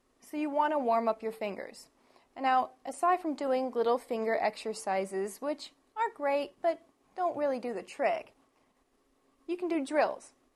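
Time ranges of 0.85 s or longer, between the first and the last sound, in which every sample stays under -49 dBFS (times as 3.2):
8.29–9.49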